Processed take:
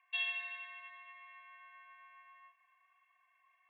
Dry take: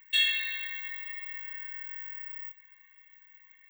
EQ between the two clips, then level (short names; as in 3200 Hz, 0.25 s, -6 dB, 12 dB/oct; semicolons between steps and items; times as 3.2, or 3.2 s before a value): vowel filter a; air absorption 480 m; +13.5 dB